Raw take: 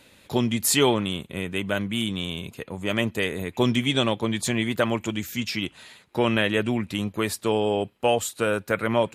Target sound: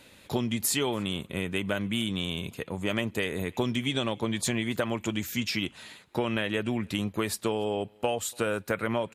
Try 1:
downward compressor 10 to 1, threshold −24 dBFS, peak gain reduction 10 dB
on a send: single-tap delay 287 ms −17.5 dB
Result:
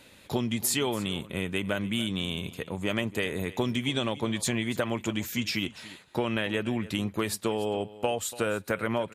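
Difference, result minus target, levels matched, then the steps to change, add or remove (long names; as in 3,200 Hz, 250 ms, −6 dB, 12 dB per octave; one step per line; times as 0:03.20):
echo-to-direct +12 dB
change: single-tap delay 287 ms −29.5 dB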